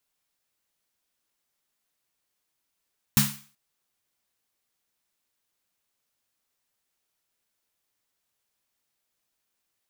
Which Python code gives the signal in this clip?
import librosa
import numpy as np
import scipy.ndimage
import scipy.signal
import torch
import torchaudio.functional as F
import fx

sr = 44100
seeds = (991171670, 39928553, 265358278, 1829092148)

y = fx.drum_snare(sr, seeds[0], length_s=0.38, hz=140.0, second_hz=210.0, noise_db=0, noise_from_hz=910.0, decay_s=0.35, noise_decay_s=0.42)